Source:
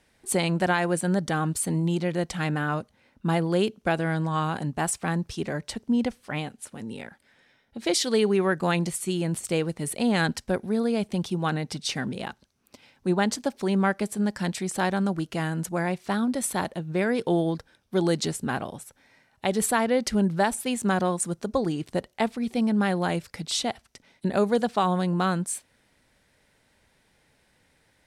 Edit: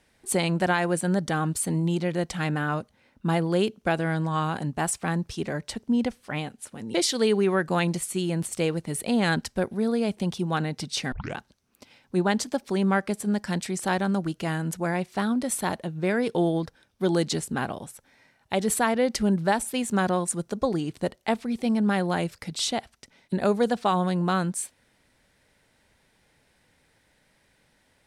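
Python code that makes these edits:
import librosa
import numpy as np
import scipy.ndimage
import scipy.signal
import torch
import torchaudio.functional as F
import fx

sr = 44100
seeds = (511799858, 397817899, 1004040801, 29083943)

y = fx.edit(x, sr, fx.cut(start_s=6.94, length_s=0.92),
    fx.tape_start(start_s=12.04, length_s=0.25), tone=tone)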